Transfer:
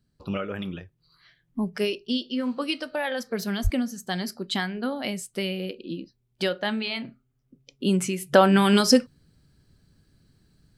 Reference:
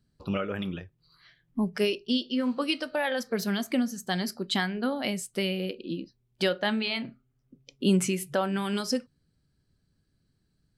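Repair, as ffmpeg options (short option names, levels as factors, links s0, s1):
-filter_complex "[0:a]asplit=3[s0][s1][s2];[s0]afade=t=out:st=3.63:d=0.02[s3];[s1]highpass=f=140:w=0.5412,highpass=f=140:w=1.3066,afade=t=in:st=3.63:d=0.02,afade=t=out:st=3.75:d=0.02[s4];[s2]afade=t=in:st=3.75:d=0.02[s5];[s3][s4][s5]amix=inputs=3:normalize=0,asetnsamples=n=441:p=0,asendcmd='8.33 volume volume -11dB',volume=1"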